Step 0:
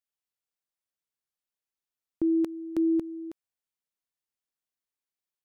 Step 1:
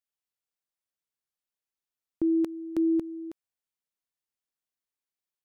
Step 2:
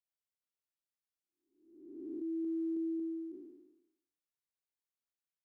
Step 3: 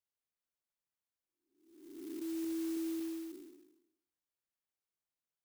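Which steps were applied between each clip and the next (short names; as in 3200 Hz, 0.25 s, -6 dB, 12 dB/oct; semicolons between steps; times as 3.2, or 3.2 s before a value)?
nothing audible
time blur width 0.616 s; gain -6 dB
clock jitter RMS 0.087 ms; gain -1.5 dB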